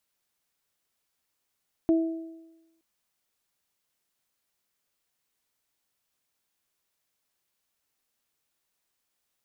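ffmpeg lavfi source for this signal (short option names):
-f lavfi -i "aevalsrc='0.141*pow(10,-3*t/1.03)*sin(2*PI*327*t)+0.0376*pow(10,-3*t/0.93)*sin(2*PI*654*t)':d=0.92:s=44100"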